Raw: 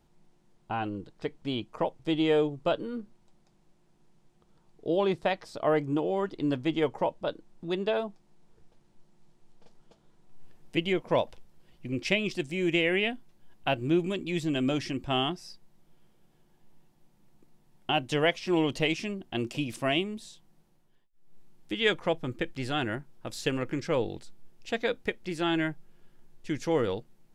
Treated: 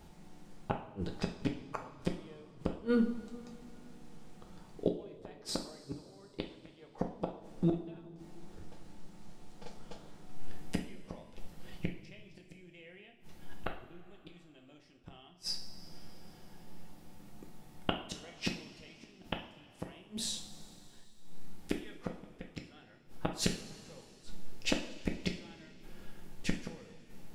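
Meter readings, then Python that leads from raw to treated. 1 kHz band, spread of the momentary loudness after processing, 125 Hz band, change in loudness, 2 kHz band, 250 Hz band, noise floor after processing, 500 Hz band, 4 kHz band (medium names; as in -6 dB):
-12.5 dB, 21 LU, -6.5 dB, -9.5 dB, -14.0 dB, -8.5 dB, -59 dBFS, -13.5 dB, -8.5 dB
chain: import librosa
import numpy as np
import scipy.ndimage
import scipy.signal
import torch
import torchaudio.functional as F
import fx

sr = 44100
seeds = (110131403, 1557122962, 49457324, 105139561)

y = fx.dynamic_eq(x, sr, hz=290.0, q=5.7, threshold_db=-44.0, ratio=4.0, max_db=-6)
y = fx.gate_flip(y, sr, shuts_db=-27.0, range_db=-40)
y = fx.rev_double_slope(y, sr, seeds[0], early_s=0.46, late_s=3.2, knee_db=-17, drr_db=2.0)
y = y * librosa.db_to_amplitude(10.0)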